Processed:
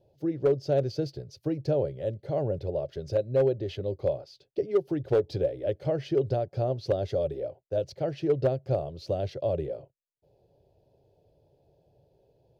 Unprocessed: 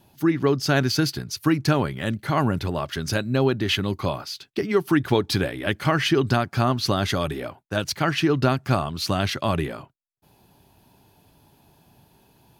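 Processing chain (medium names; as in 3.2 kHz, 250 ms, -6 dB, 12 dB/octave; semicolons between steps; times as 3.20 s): FFT filter 140 Hz 0 dB, 230 Hz -13 dB, 530 Hz +13 dB, 1.1 kHz -21 dB, 4.9 kHz -11 dB, 10 kHz -24 dB; hard clipper -9.5 dBFS, distortion -24 dB; trim -7 dB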